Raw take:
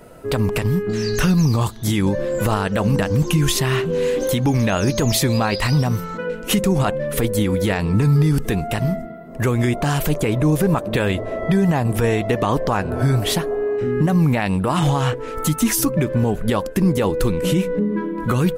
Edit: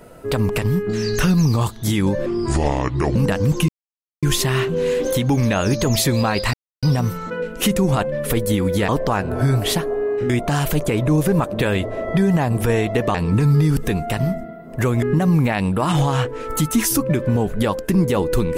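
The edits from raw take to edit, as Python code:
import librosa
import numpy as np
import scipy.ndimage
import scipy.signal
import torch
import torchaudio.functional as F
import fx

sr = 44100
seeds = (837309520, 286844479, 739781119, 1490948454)

y = fx.edit(x, sr, fx.speed_span(start_s=2.26, length_s=0.6, speed=0.67),
    fx.insert_silence(at_s=3.39, length_s=0.54),
    fx.insert_silence(at_s=5.7, length_s=0.29),
    fx.swap(start_s=7.76, length_s=1.88, other_s=12.49, other_length_s=1.41), tone=tone)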